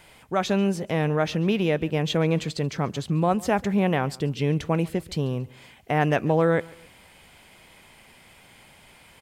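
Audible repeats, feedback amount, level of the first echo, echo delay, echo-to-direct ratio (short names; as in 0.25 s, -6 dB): 2, 37%, -23.0 dB, 0.14 s, -22.5 dB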